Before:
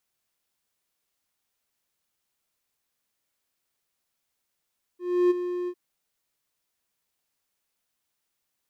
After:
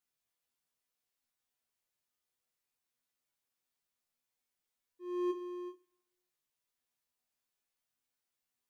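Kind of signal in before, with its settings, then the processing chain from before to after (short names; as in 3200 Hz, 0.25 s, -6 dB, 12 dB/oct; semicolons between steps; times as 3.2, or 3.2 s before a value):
ADSR triangle 356 Hz, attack 0.314 s, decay 21 ms, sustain -11 dB, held 0.69 s, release 61 ms -14 dBFS
resonator bank E2 fifth, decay 0.2 s; Schroeder reverb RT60 0.97 s, combs from 32 ms, DRR 19.5 dB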